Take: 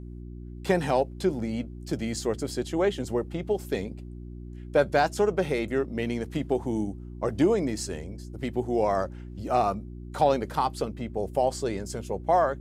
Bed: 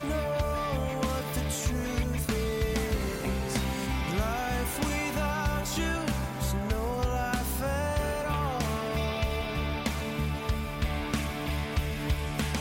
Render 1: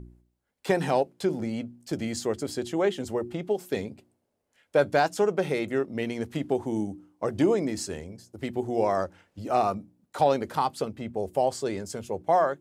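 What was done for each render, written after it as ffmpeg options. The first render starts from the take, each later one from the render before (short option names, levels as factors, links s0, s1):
-af "bandreject=f=60:t=h:w=4,bandreject=f=120:t=h:w=4,bandreject=f=180:t=h:w=4,bandreject=f=240:t=h:w=4,bandreject=f=300:t=h:w=4,bandreject=f=360:t=h:w=4"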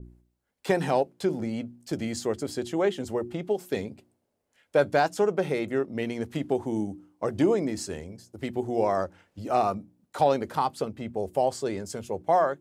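-af "adynamicequalizer=threshold=0.01:dfrequency=1800:dqfactor=0.7:tfrequency=1800:tqfactor=0.7:attack=5:release=100:ratio=0.375:range=1.5:mode=cutabove:tftype=highshelf"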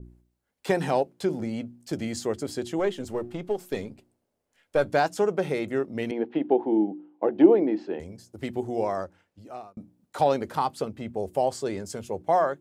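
-filter_complex "[0:a]asettb=1/sr,asplit=3[s0][s1][s2];[s0]atrim=end=2.794[s3];[s1]atrim=start=2.79:end=4.9,asetpts=PTS-STARTPTS,afade=t=in:d=0.004:c=qsin,afade=t=out:st=2.106:d=0.004:c=qsin,aeval=exprs='if(lt(val(0),0),0.708*val(0),val(0))':c=same[s4];[s2]atrim=start=4.896[s5];[s3][s4]acrossfade=d=0.004:c1=hsin:c2=qsin[s6];[s6][s5]acrossfade=d=0.004:c1=qsin:c2=hsin,asettb=1/sr,asplit=3[s7][s8][s9];[s7]atrim=end=6.114[s10];[s8]atrim=start=6.11:end=8,asetpts=PTS-STARTPTS,afade=t=in:d=0.004:c=qsin,afade=t=out:st=1.886:d=0.004:c=qsin,highpass=f=200:w=0.5412,highpass=f=200:w=1.3066,equalizer=f=330:t=q:w=4:g=9,equalizer=f=480:t=q:w=4:g=4,equalizer=f=810:t=q:w=4:g=8,equalizer=f=1200:t=q:w=4:g=-5,equalizer=f=2100:t=q:w=4:g=-3,lowpass=f=3000:w=0.5412,lowpass=f=3000:w=1.3066[s11];[s9]atrim=start=7.996[s12];[s10][s11]acrossfade=d=0.004:c1=hsin:c2=qsin[s13];[s13][s12]acrossfade=d=0.004:c1=qsin:c2=hsin,asplit=2[s14][s15];[s14]atrim=end=9.77,asetpts=PTS-STARTPTS,afade=t=out:st=8.55:d=1.22[s16];[s15]atrim=start=9.77,asetpts=PTS-STARTPTS,afade=t=in:d=0.004:c=hsin[s17];[s16][s17]concat=n=2:v=0:a=1"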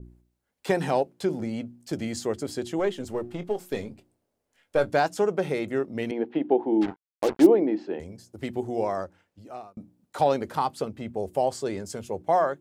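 -filter_complex "[0:a]asettb=1/sr,asplit=3[s0][s1][s2];[s0]atrim=end=3.304[s3];[s1]atrim=start=3.3:end=4.9,asetpts=PTS-STARTPTS,afade=t=in:d=0.004:c=qsin,afade=t=out:st=1.596:d=0.004:c=qsin,asplit=2[s4][s5];[s5]adelay=23,volume=0.251[s6];[s4][s6]amix=inputs=2:normalize=0,atrim=end_sample=70560[s7];[s2]atrim=start=4.896[s8];[s3][s7]acrossfade=d=0.004:c1=hsin:c2=qsin[s9];[s9][s8]acrossfade=d=0.004:c1=qsin:c2=hsin,asplit=3[s10][s11][s12];[s10]afade=t=out:st=6.81:d=0.02[s13];[s11]acrusher=bits=4:mix=0:aa=0.5,afade=t=in:st=6.81:d=0.02,afade=t=out:st=7.45:d=0.02[s14];[s12]afade=t=in:st=7.45:d=0.02[s15];[s13][s14][s15]amix=inputs=3:normalize=0"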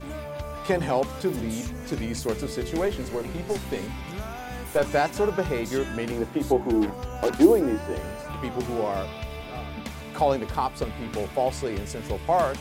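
-filter_complex "[1:a]volume=0.531[s0];[0:a][s0]amix=inputs=2:normalize=0"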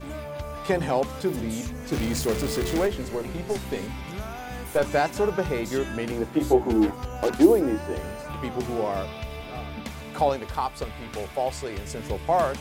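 -filter_complex "[0:a]asettb=1/sr,asplit=3[s0][s1][s2];[s0]atrim=end=1.924[s3];[s1]atrim=start=1.92:end=2.87,asetpts=PTS-STARTPTS,afade=t=in:d=0.004:c=qsin,afade=t=out:st=0.946:d=0.004:c=qsin,aeval=exprs='val(0)+0.5*0.0398*sgn(val(0))':c=same[s4];[s2]atrim=start=2.866[s5];[s3][s4]acrossfade=d=0.004:c1=hsin:c2=qsin[s6];[s6][s5]acrossfade=d=0.004:c1=qsin:c2=hsin,asettb=1/sr,asplit=3[s7][s8][s9];[s7]atrim=end=6.324[s10];[s8]atrim=start=6.32:end=7.05,asetpts=PTS-STARTPTS,afade=t=in:d=0.004:c=qsin,afade=t=out:st=0.726:d=0.004:c=qsin,asplit=2[s11][s12];[s12]adelay=13,volume=0.708[s13];[s11][s13]amix=inputs=2:normalize=0,atrim=end_sample=32193[s14];[s9]atrim=start=7.046[s15];[s10][s14]acrossfade=d=0.004:c1=hsin:c2=qsin[s16];[s16][s15]acrossfade=d=0.004:c1=qsin:c2=hsin,asettb=1/sr,asplit=3[s17][s18][s19];[s17]atrim=end=10.294[s20];[s18]atrim=start=10.29:end=11.86,asetpts=PTS-STARTPTS,afade=t=in:d=0.004:c=qsin,afade=t=out:st=1.566:d=0.004:c=qsin,equalizer=f=220:w=0.58:g=-6.5[s21];[s19]atrim=start=11.856[s22];[s20][s21]acrossfade=d=0.004:c1=hsin:c2=qsin[s23];[s23][s22]acrossfade=d=0.004:c1=qsin:c2=hsin"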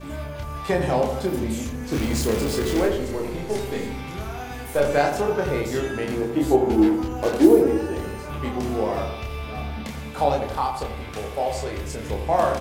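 -filter_complex "[0:a]asplit=2[s0][s1];[s1]adelay=28,volume=0.708[s2];[s0][s2]amix=inputs=2:normalize=0,asplit=2[s3][s4];[s4]adelay=84,lowpass=f=1500:p=1,volume=0.501,asplit=2[s5][s6];[s6]adelay=84,lowpass=f=1500:p=1,volume=0.53,asplit=2[s7][s8];[s8]adelay=84,lowpass=f=1500:p=1,volume=0.53,asplit=2[s9][s10];[s10]adelay=84,lowpass=f=1500:p=1,volume=0.53,asplit=2[s11][s12];[s12]adelay=84,lowpass=f=1500:p=1,volume=0.53,asplit=2[s13][s14];[s14]adelay=84,lowpass=f=1500:p=1,volume=0.53,asplit=2[s15][s16];[s16]adelay=84,lowpass=f=1500:p=1,volume=0.53[s17];[s3][s5][s7][s9][s11][s13][s15][s17]amix=inputs=8:normalize=0"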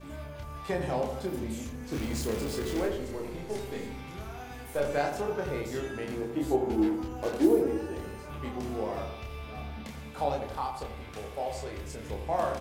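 -af "volume=0.355"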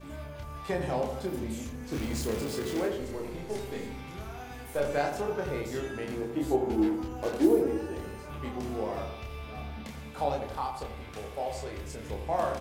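-filter_complex "[0:a]asettb=1/sr,asplit=3[s0][s1][s2];[s0]atrim=end=2.414[s3];[s1]atrim=start=2.41:end=3,asetpts=PTS-STARTPTS,afade=t=in:d=0.004:c=qsin,afade=t=out:st=0.586:d=0.004:c=qsin,highpass=f=83:w=0.5412,highpass=f=83:w=1.3066[s4];[s2]atrim=start=2.996[s5];[s3][s4]acrossfade=d=0.004:c1=hsin:c2=qsin[s6];[s6][s5]acrossfade=d=0.004:c1=qsin:c2=hsin"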